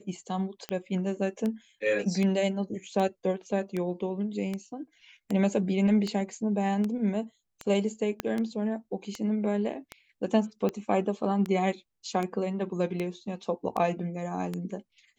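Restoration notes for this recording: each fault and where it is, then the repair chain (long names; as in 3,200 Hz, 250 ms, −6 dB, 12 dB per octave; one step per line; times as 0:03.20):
scratch tick 78 rpm −19 dBFS
0:08.20: click −14 dBFS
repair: click removal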